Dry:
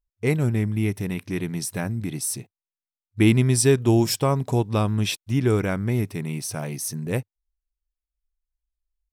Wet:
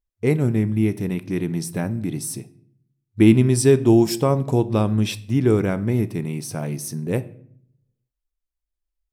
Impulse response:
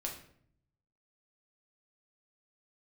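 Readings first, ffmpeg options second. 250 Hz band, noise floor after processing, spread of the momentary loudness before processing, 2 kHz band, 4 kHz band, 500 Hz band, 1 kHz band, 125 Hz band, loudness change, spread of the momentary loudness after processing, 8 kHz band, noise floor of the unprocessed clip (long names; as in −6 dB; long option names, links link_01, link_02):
+4.5 dB, −83 dBFS, 11 LU, −1.5 dB, −2.5 dB, +4.0 dB, +0.5 dB, +1.5 dB, +3.0 dB, 13 LU, −2.5 dB, below −85 dBFS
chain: -filter_complex "[0:a]equalizer=frequency=290:width_type=o:width=2.7:gain=7,asplit=2[link_01][link_02];[1:a]atrim=start_sample=2205[link_03];[link_02][link_03]afir=irnorm=-1:irlink=0,volume=-9dB[link_04];[link_01][link_04]amix=inputs=2:normalize=0,volume=-4.5dB"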